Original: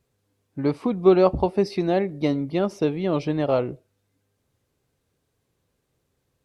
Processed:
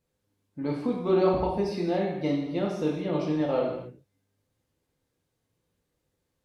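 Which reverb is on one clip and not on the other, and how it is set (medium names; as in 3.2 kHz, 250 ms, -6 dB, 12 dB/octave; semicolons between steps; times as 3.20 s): gated-style reverb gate 310 ms falling, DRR -2.5 dB; trim -9 dB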